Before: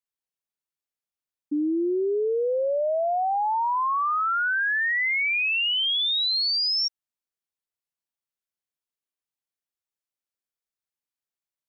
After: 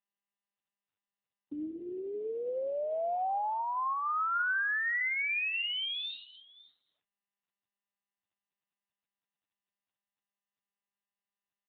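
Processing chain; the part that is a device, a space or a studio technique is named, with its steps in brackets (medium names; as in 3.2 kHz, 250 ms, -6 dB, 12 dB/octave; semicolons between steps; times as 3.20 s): 4.34–5.50 s: high-pass 180 Hz 12 dB/octave; satellite phone (band-pass 390–3000 Hz; delay 551 ms -20 dB; trim -4.5 dB; AMR-NB 6.7 kbps 8 kHz)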